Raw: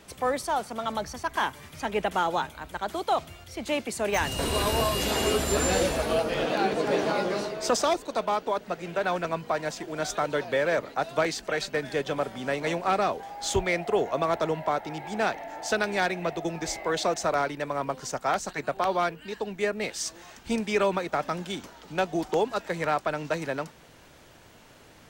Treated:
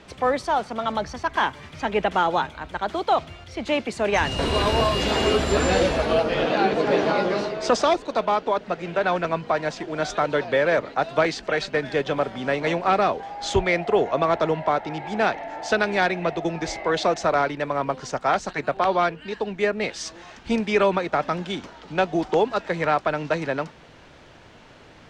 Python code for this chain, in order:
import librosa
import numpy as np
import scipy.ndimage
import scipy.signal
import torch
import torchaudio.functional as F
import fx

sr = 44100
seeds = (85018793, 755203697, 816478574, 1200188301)

y = scipy.signal.sosfilt(scipy.signal.butter(2, 4500.0, 'lowpass', fs=sr, output='sos'), x)
y = y * 10.0 ** (5.0 / 20.0)